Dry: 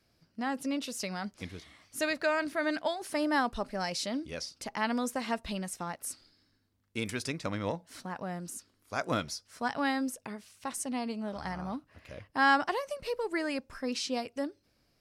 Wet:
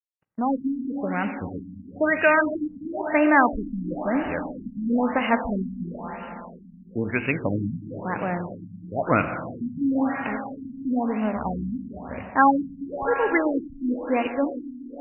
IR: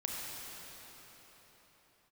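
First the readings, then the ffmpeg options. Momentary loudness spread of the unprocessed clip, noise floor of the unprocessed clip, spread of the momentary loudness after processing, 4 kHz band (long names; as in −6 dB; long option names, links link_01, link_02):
13 LU, −72 dBFS, 16 LU, −8.0 dB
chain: -filter_complex "[0:a]highshelf=frequency=3200:gain=11,aeval=exprs='sgn(val(0))*max(abs(val(0))-0.00178,0)':channel_layout=same,asplit=2[link_01][link_02];[1:a]atrim=start_sample=2205[link_03];[link_02][link_03]afir=irnorm=-1:irlink=0,volume=-4dB[link_04];[link_01][link_04]amix=inputs=2:normalize=0,afftfilt=real='re*lt(b*sr/1024,270*pow(3000/270,0.5+0.5*sin(2*PI*1*pts/sr)))':imag='im*lt(b*sr/1024,270*pow(3000/270,0.5+0.5*sin(2*PI*1*pts/sr)))':win_size=1024:overlap=0.75,volume=6.5dB"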